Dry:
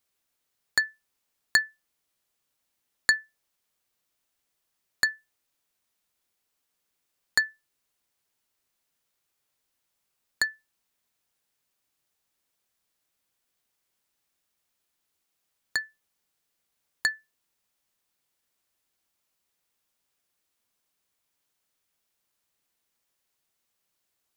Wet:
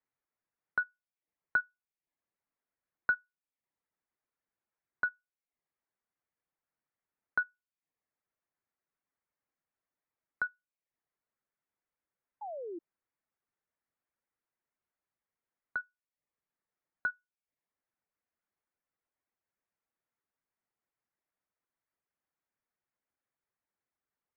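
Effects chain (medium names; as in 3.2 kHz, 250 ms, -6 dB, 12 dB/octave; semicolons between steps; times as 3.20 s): reverb removal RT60 0.54 s; mistuned SSB -280 Hz 330–2400 Hz; painted sound fall, 12.41–12.79 s, 320–880 Hz -34 dBFS; trim -6.5 dB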